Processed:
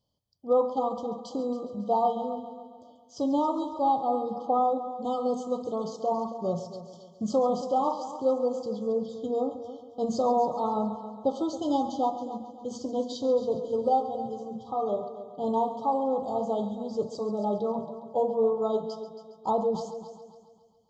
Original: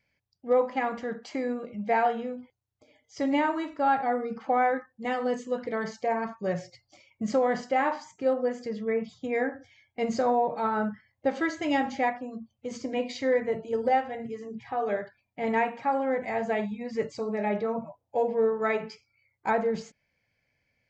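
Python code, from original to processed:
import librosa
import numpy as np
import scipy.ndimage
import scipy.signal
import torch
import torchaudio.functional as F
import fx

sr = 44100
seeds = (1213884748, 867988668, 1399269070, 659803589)

p1 = fx.brickwall_bandstop(x, sr, low_hz=1300.0, high_hz=3000.0)
y = p1 + fx.echo_heads(p1, sr, ms=137, heads='first and second', feedback_pct=44, wet_db=-14.5, dry=0)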